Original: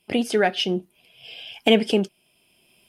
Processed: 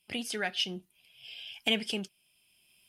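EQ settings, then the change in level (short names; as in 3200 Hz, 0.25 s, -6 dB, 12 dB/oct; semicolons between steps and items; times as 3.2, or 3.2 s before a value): passive tone stack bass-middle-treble 5-5-5; low shelf 120 Hz +4 dB; +2.5 dB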